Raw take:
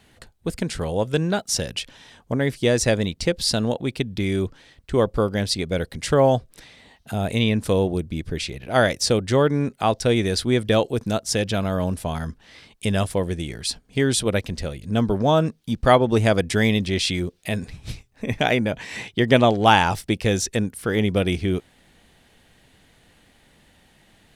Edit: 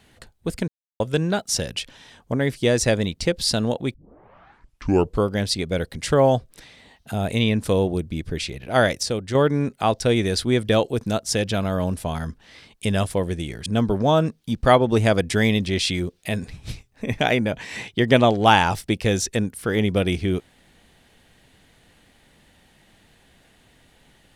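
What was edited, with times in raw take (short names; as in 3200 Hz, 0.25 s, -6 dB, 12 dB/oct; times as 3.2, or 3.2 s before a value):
0.68–1 mute
3.94 tape start 1.32 s
9.03–9.35 gain -5.5 dB
13.66–14.86 cut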